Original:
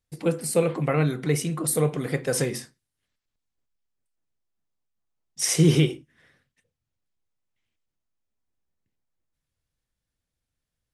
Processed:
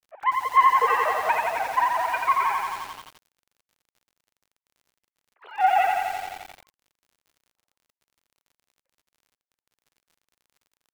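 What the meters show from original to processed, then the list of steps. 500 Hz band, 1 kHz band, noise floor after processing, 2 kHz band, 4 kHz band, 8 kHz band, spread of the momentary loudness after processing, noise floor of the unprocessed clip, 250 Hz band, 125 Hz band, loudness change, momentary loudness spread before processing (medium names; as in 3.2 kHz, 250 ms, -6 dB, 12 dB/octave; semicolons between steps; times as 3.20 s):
-6.0 dB, +19.5 dB, under -85 dBFS, +8.0 dB, -6.0 dB, -16.5 dB, 16 LU, -84 dBFS, under -25 dB, under -30 dB, +1.5 dB, 9 LU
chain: formants replaced by sine waves; full-wave rectifier; mistuned SSB +76 Hz 260–2400 Hz; crackle 55 per s -55 dBFS; bit-crushed delay 87 ms, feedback 80%, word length 8-bit, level -3.5 dB; trim +5.5 dB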